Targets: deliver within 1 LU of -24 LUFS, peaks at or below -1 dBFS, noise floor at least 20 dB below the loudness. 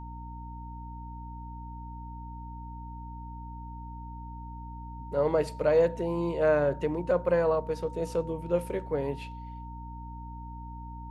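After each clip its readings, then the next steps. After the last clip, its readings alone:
hum 60 Hz; highest harmonic 300 Hz; hum level -39 dBFS; steady tone 920 Hz; tone level -44 dBFS; loudness -28.0 LUFS; peak level -12.5 dBFS; loudness target -24.0 LUFS
-> de-hum 60 Hz, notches 5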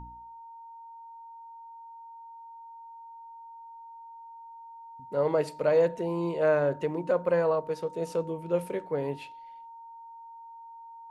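hum not found; steady tone 920 Hz; tone level -44 dBFS
-> band-stop 920 Hz, Q 30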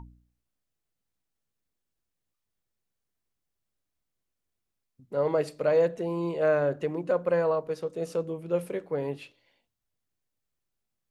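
steady tone not found; loudness -28.5 LUFS; peak level -13.0 dBFS; loudness target -24.0 LUFS
-> trim +4.5 dB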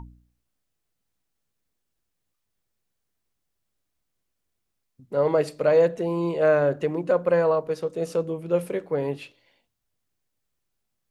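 loudness -24.0 LUFS; peak level -8.5 dBFS; noise floor -79 dBFS

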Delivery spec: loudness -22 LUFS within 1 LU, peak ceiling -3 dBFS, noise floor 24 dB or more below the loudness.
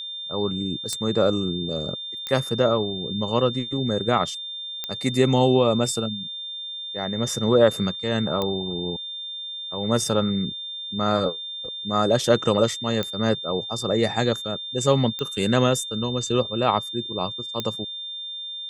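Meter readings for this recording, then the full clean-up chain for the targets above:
clicks found 7; steady tone 3.6 kHz; tone level -31 dBFS; loudness -24.0 LUFS; peak level -3.0 dBFS; loudness target -22.0 LUFS
-> de-click; band-stop 3.6 kHz, Q 30; trim +2 dB; peak limiter -3 dBFS

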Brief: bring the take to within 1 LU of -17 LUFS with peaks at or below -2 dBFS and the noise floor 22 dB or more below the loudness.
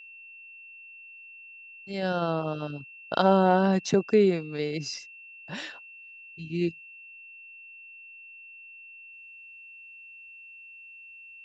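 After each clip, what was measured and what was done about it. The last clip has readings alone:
steady tone 2.7 kHz; tone level -45 dBFS; loudness -26.5 LUFS; peak level -7.5 dBFS; loudness target -17.0 LUFS
-> band-stop 2.7 kHz, Q 30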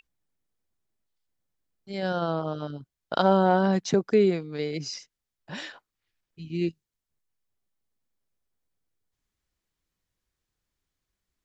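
steady tone not found; loudness -26.0 LUFS; peak level -7.5 dBFS; loudness target -17.0 LUFS
-> trim +9 dB; peak limiter -2 dBFS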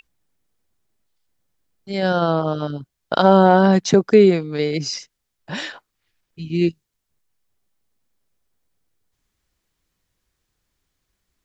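loudness -17.0 LUFS; peak level -2.0 dBFS; noise floor -77 dBFS

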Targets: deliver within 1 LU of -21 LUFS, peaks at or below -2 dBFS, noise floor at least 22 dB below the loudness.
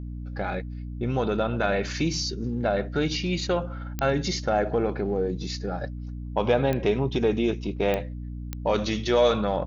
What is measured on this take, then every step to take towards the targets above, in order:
clicks found 4; hum 60 Hz; highest harmonic 300 Hz; hum level -32 dBFS; loudness -26.5 LUFS; peak level -9.5 dBFS; loudness target -21.0 LUFS
-> de-click; de-hum 60 Hz, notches 5; trim +5.5 dB

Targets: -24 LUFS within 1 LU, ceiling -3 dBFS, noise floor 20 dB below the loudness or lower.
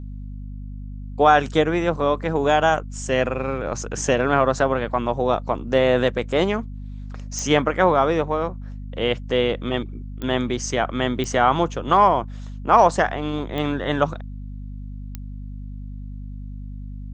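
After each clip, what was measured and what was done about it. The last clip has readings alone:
clicks found 5; hum 50 Hz; highest harmonic 250 Hz; hum level -31 dBFS; loudness -21.0 LUFS; peak level -2.5 dBFS; loudness target -24.0 LUFS
-> de-click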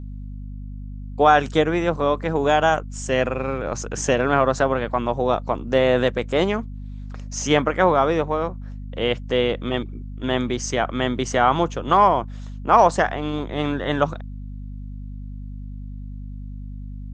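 clicks found 0; hum 50 Hz; highest harmonic 250 Hz; hum level -31 dBFS
-> hum notches 50/100/150/200/250 Hz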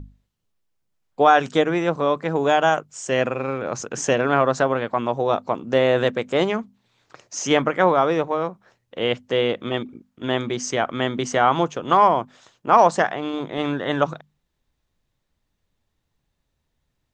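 hum not found; loudness -21.0 LUFS; peak level -2.5 dBFS; loudness target -24.0 LUFS
-> trim -3 dB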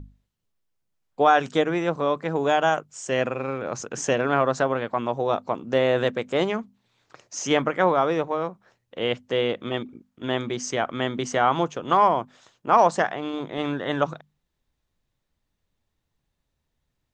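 loudness -24.0 LUFS; peak level -5.5 dBFS; noise floor -78 dBFS

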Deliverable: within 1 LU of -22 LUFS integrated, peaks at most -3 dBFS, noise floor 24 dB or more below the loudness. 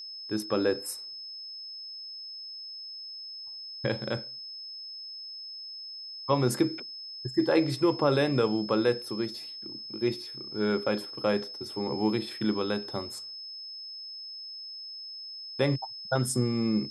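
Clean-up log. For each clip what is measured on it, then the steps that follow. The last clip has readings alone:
steady tone 5.2 kHz; tone level -39 dBFS; loudness -31.0 LUFS; peak level -11.5 dBFS; loudness target -22.0 LUFS
-> band-stop 5.2 kHz, Q 30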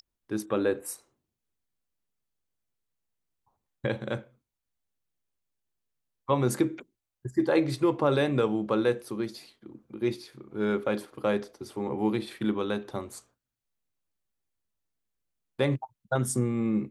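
steady tone not found; loudness -29.0 LUFS; peak level -11.0 dBFS; loudness target -22.0 LUFS
-> trim +7 dB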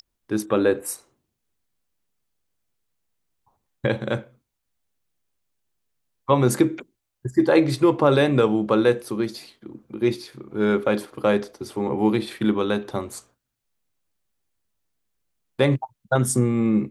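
loudness -22.0 LUFS; peak level -4.0 dBFS; noise floor -79 dBFS

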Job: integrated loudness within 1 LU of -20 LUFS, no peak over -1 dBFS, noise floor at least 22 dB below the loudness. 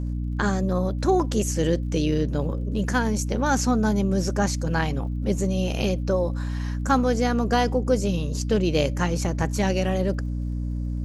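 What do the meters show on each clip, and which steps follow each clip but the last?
tick rate 41 per s; hum 60 Hz; highest harmonic 300 Hz; hum level -25 dBFS; loudness -24.5 LUFS; peak level -8.0 dBFS; loudness target -20.0 LUFS
-> de-click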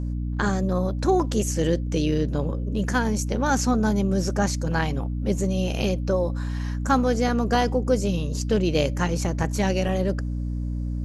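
tick rate 0.18 per s; hum 60 Hz; highest harmonic 300 Hz; hum level -25 dBFS
-> hum notches 60/120/180/240/300 Hz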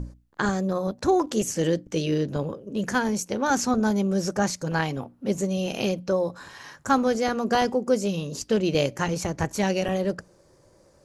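hum not found; loudness -25.5 LUFS; peak level -8.5 dBFS; loudness target -20.0 LUFS
-> trim +5.5 dB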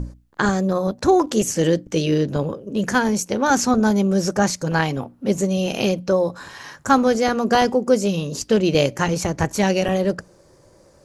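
loudness -20.0 LUFS; peak level -3.0 dBFS; noise floor -53 dBFS

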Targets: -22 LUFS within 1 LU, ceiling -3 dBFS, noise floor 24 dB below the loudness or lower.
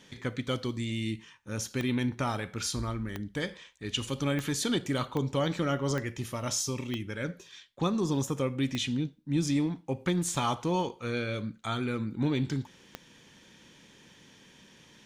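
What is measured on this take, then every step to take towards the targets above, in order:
clicks found 8; loudness -31.5 LUFS; peak level -15.5 dBFS; loudness target -22.0 LUFS
-> de-click; trim +9.5 dB

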